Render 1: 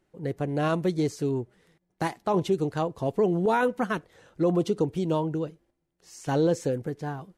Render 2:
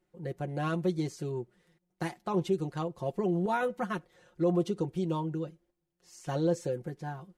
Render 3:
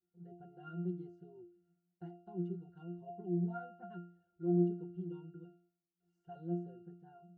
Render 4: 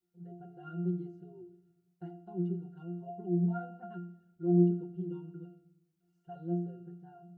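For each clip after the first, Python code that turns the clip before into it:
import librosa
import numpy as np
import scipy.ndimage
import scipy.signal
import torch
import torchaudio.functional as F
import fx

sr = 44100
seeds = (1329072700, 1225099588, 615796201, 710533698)

y1 = x + 0.69 * np.pad(x, (int(5.6 * sr / 1000.0), 0))[:len(x)]
y1 = y1 * 10.0 ** (-7.5 / 20.0)
y2 = fx.octave_resonator(y1, sr, note='F', decay_s=0.48)
y2 = y2 * 10.0 ** (1.5 / 20.0)
y3 = fx.room_shoebox(y2, sr, seeds[0], volume_m3=3000.0, walls='furnished', distance_m=0.93)
y3 = y3 * 10.0 ** (2.0 / 20.0)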